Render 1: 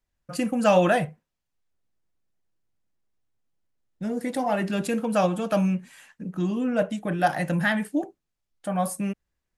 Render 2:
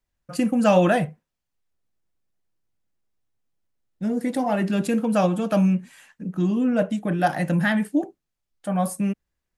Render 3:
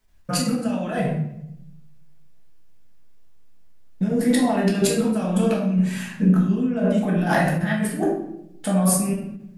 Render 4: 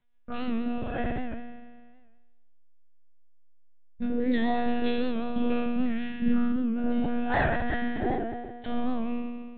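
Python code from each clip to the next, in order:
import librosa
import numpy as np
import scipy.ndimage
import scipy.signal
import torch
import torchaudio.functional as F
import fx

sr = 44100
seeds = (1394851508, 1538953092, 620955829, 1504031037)

y1 = fx.dynamic_eq(x, sr, hz=230.0, q=0.94, threshold_db=-36.0, ratio=4.0, max_db=5)
y2 = fx.over_compress(y1, sr, threshold_db=-30.0, ratio=-1.0)
y2 = fx.room_shoebox(y2, sr, seeds[0], volume_m3=200.0, walls='mixed', distance_m=1.5)
y2 = fx.end_taper(y2, sr, db_per_s=190.0)
y2 = y2 * librosa.db_to_amplitude(2.5)
y3 = fx.spec_trails(y2, sr, decay_s=1.73)
y3 = fx.lpc_monotone(y3, sr, seeds[1], pitch_hz=240.0, order=16)
y3 = fx.record_warp(y3, sr, rpm=78.0, depth_cents=100.0)
y3 = y3 * librosa.db_to_amplitude(-8.5)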